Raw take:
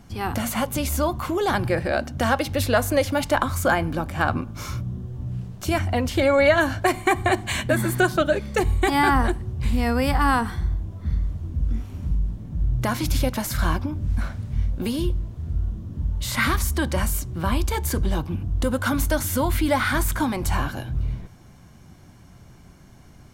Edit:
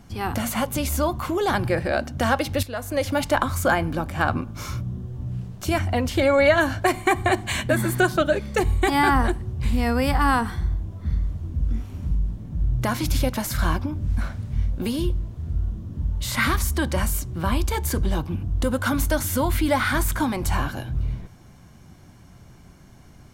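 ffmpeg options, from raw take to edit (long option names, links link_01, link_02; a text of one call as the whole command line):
ffmpeg -i in.wav -filter_complex "[0:a]asplit=2[link_01][link_02];[link_01]atrim=end=2.63,asetpts=PTS-STARTPTS,afade=type=out:start_time=2.626:duration=0.004:curve=hsin:silence=0.223872[link_03];[link_02]atrim=start=2.63,asetpts=PTS-STARTPTS,afade=type=in:duration=0.47:curve=qua:silence=0.223872[link_04];[link_03][link_04]concat=n=2:v=0:a=1" out.wav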